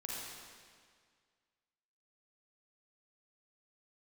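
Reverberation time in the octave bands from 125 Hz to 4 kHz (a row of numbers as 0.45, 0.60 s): 2.0, 1.9, 1.9, 1.9, 1.8, 1.7 s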